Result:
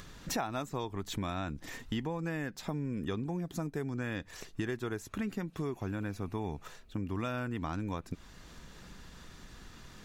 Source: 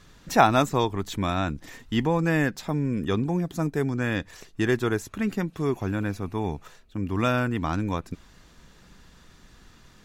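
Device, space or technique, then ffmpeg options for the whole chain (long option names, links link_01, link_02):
upward and downward compression: -af "acompressor=mode=upward:threshold=-45dB:ratio=2.5,acompressor=threshold=-33dB:ratio=6"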